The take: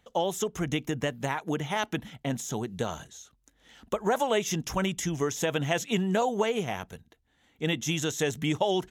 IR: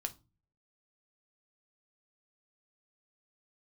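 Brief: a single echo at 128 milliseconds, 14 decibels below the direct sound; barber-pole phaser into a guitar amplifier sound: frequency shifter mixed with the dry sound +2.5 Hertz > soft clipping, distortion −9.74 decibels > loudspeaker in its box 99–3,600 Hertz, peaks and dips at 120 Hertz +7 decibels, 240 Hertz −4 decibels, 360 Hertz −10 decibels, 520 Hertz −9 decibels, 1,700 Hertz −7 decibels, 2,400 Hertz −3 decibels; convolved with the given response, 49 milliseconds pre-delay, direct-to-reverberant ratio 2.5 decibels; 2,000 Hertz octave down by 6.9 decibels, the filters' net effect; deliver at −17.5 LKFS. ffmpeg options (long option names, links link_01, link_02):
-filter_complex "[0:a]equalizer=frequency=2000:width_type=o:gain=-3.5,aecho=1:1:128:0.2,asplit=2[link_01][link_02];[1:a]atrim=start_sample=2205,adelay=49[link_03];[link_02][link_03]afir=irnorm=-1:irlink=0,volume=-2dB[link_04];[link_01][link_04]amix=inputs=2:normalize=0,asplit=2[link_05][link_06];[link_06]afreqshift=2.5[link_07];[link_05][link_07]amix=inputs=2:normalize=1,asoftclip=threshold=-29.5dB,highpass=99,equalizer=frequency=120:width_type=q:width=4:gain=7,equalizer=frequency=240:width_type=q:width=4:gain=-4,equalizer=frequency=360:width_type=q:width=4:gain=-10,equalizer=frequency=520:width_type=q:width=4:gain=-9,equalizer=frequency=1700:width_type=q:width=4:gain=-7,equalizer=frequency=2400:width_type=q:width=4:gain=-3,lowpass=frequency=3600:width=0.5412,lowpass=frequency=3600:width=1.3066,volume=21dB"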